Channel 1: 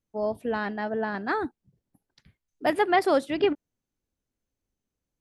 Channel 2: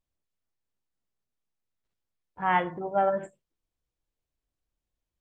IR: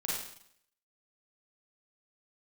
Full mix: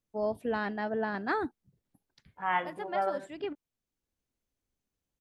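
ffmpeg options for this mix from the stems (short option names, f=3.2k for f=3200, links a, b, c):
-filter_complex "[0:a]volume=-3dB[a];[1:a]lowshelf=f=450:g=-10,volume=-3dB,asplit=2[b][c];[c]apad=whole_len=233974[d];[a][d]sidechaincompress=threshold=-43dB:ratio=5:attack=16:release=850[e];[e][b]amix=inputs=2:normalize=0"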